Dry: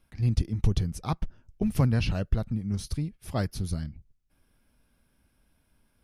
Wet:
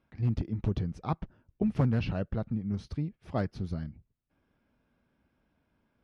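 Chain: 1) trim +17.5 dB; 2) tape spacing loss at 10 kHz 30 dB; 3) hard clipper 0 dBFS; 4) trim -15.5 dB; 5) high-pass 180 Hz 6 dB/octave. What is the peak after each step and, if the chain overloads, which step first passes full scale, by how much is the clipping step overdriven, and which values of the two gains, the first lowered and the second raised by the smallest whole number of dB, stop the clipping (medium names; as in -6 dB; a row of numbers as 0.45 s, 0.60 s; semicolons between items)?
+5.5 dBFS, +5.0 dBFS, 0.0 dBFS, -15.5 dBFS, -14.0 dBFS; step 1, 5.0 dB; step 1 +12.5 dB, step 4 -10.5 dB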